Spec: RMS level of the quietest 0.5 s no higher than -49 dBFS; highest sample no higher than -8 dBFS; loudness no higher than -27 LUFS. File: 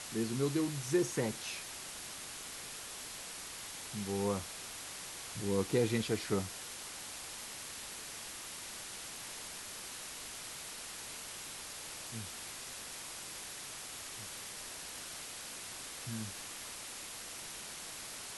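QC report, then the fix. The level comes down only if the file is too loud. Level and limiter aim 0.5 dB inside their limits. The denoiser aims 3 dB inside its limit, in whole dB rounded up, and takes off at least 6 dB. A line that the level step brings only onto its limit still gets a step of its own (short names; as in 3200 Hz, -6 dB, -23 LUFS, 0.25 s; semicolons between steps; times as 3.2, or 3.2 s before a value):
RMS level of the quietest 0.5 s -46 dBFS: fail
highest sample -19.0 dBFS: OK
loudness -39.5 LUFS: OK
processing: denoiser 6 dB, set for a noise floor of -46 dBFS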